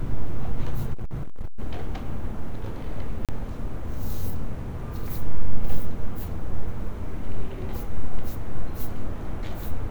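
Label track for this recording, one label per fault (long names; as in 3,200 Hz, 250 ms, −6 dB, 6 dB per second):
0.930000	1.600000	clipping −23.5 dBFS
3.250000	3.290000	drop-out 37 ms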